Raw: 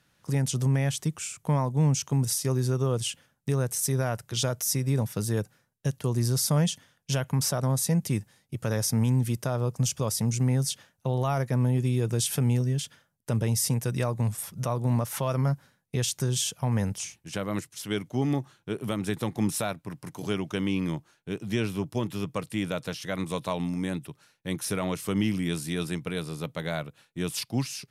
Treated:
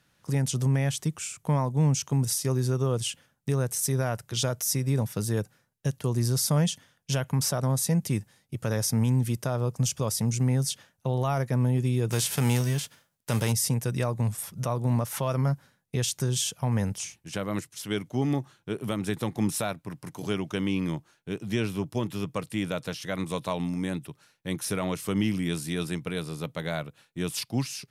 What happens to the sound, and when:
12.10–13.51 s: formants flattened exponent 0.6

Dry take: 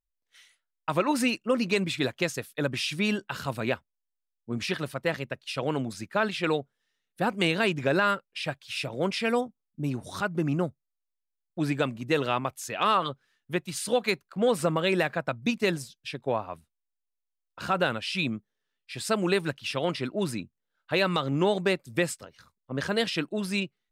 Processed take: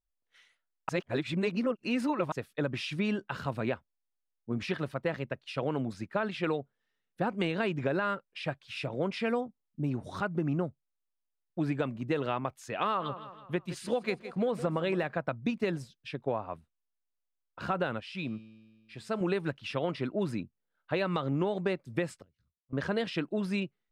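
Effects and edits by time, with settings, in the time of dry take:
0.89–2.32 s: reverse
12.84–15.04 s: feedback delay 162 ms, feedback 48%, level -16 dB
18.00–19.21 s: feedback comb 110 Hz, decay 1.8 s, mix 50%
22.22–22.73 s: amplifier tone stack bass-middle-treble 10-0-1
whole clip: low-pass 1.6 kHz 6 dB/octave; compression, threshold -26 dBFS

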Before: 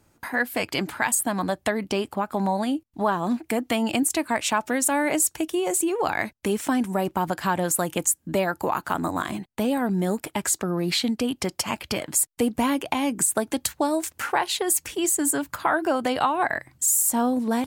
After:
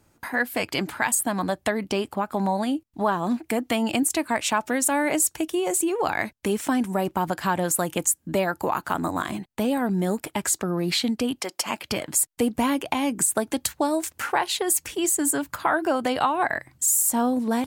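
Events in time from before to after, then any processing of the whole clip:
11.40–11.88 s: high-pass 550 Hz -> 140 Hz

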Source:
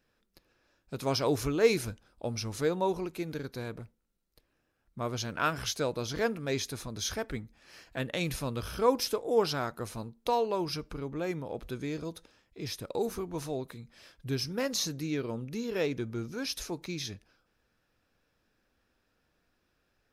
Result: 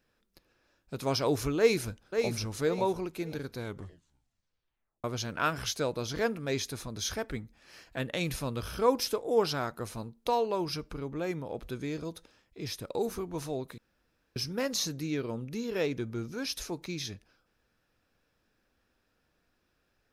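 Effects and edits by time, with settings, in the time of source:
1.58–2.31 s: echo throw 540 ms, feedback 30%, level -6 dB
3.58 s: tape stop 1.46 s
13.78–14.36 s: room tone

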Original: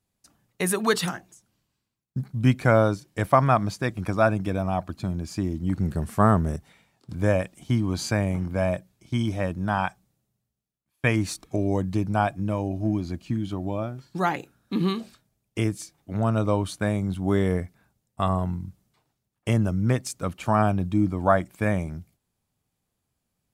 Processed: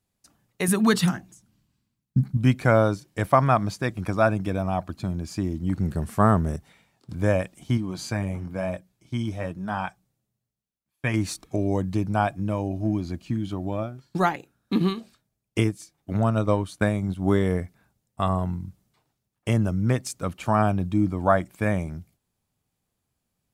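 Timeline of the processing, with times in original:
0.68–2.37 s: resonant low shelf 320 Hz +7 dB, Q 1.5
7.77–11.14 s: flange 1 Hz, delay 3.4 ms, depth 6.4 ms, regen -47%
13.72–17.43 s: transient shaper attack +5 dB, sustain -6 dB

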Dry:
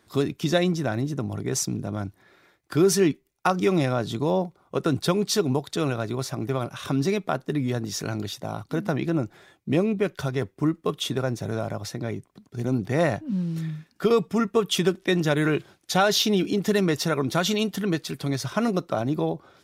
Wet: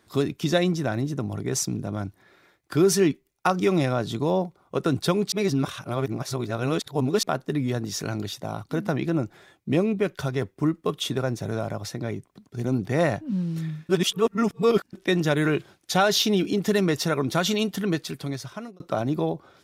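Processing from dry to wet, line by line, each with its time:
5.32–7.23 s: reverse
13.89–14.93 s: reverse
18.01–18.80 s: fade out

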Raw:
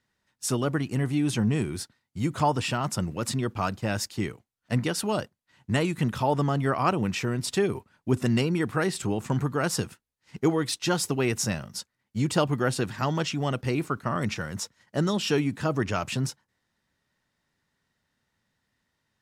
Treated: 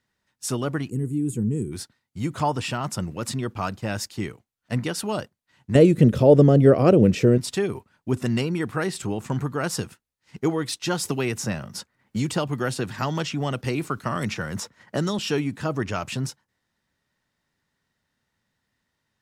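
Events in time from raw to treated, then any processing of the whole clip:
0.90–1.72 s: time-frequency box 510–6600 Hz -20 dB
5.75–7.38 s: resonant low shelf 690 Hz +9.5 dB, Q 3
11.05–15.19 s: three bands compressed up and down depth 70%

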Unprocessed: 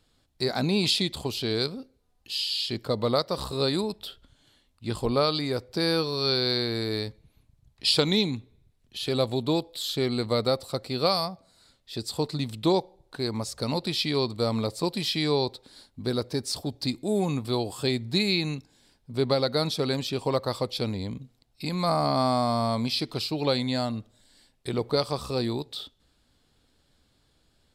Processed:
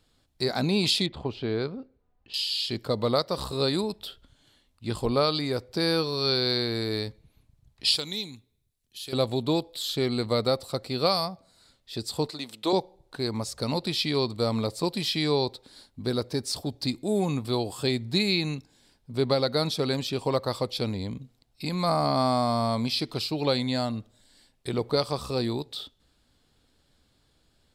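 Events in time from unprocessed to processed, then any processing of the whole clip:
1.06–2.34 s: low-pass 2 kHz
7.96–9.13 s: pre-emphasis filter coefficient 0.8
12.30–12.73 s: high-pass 390 Hz

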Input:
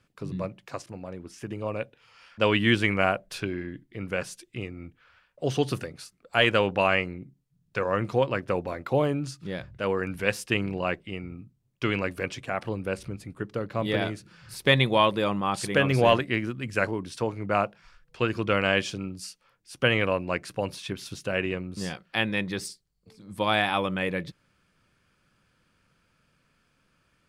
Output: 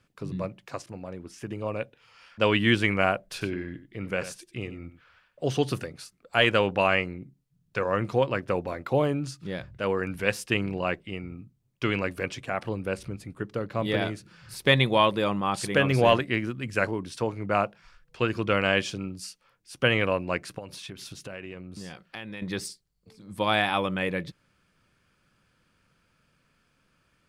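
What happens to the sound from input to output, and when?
3.27–5.46 s: delay 93 ms -13 dB
20.58–22.42 s: compression 4:1, threshold -37 dBFS

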